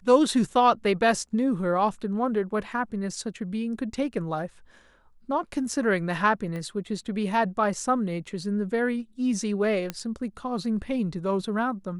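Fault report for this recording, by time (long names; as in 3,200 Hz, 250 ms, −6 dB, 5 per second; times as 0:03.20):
0:06.56: click −24 dBFS
0:09.90: click −15 dBFS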